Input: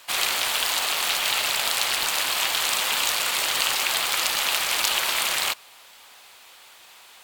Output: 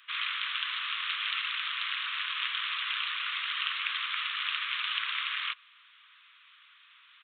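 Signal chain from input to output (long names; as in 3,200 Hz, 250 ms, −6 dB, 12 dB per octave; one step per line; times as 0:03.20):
downsampling to 8,000 Hz
Butterworth high-pass 1,100 Hz 72 dB per octave
level −6 dB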